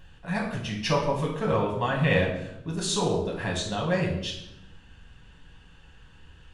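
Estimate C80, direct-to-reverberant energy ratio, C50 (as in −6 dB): 8.0 dB, −1.5 dB, 5.0 dB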